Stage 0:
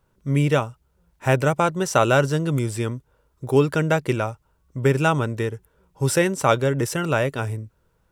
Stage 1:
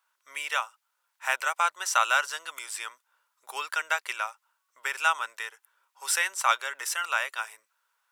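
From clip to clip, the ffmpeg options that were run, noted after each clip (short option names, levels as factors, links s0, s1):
-af "highpass=f=1000:w=0.5412,highpass=f=1000:w=1.3066"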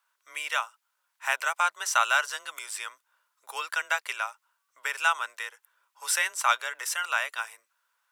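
-af "afreqshift=26"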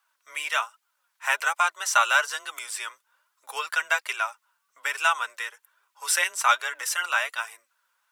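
-af "flanger=delay=2.4:depth=3.4:regen=27:speed=1.2:shape=triangular,volume=2.11"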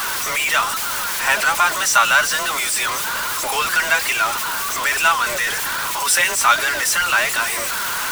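-af "aeval=exprs='val(0)+0.5*0.0944*sgn(val(0))':c=same,volume=1.5"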